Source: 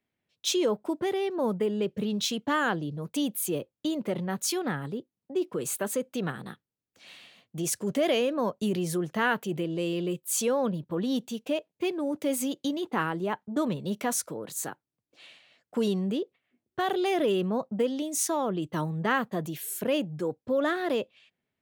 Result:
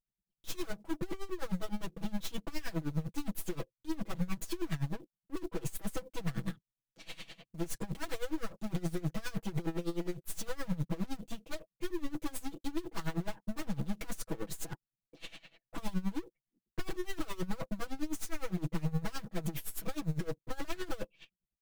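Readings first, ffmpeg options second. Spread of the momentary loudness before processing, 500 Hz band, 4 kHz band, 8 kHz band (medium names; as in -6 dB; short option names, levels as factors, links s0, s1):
7 LU, -14.5 dB, -11.5 dB, -13.5 dB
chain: -af "aeval=exprs='(mod(10.6*val(0)+1,2)-1)/10.6':c=same,aeval=exprs='(tanh(251*val(0)+0.6)-tanh(0.6))/251':c=same,lowshelf=f=340:g=10,anlmdn=0.00001,aecho=1:1:6.1:0.97,acrusher=bits=7:mode=log:mix=0:aa=0.000001,aeval=exprs='val(0)*pow(10,-20*(0.5-0.5*cos(2*PI*9.7*n/s))/20)':c=same,volume=2.24"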